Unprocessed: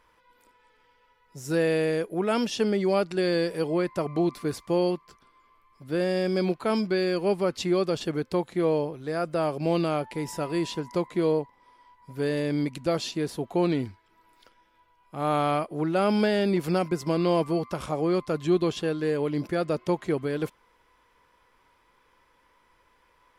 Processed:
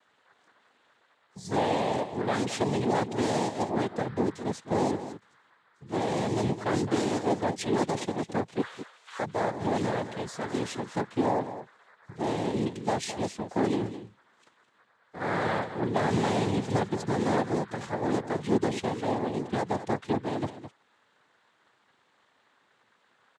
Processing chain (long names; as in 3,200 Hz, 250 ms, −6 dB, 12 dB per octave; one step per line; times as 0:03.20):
0:08.61–0:09.19: Chebyshev high-pass filter 1,100 Hz, order 4
cochlear-implant simulation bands 6
single-tap delay 212 ms −12 dB
level −2.5 dB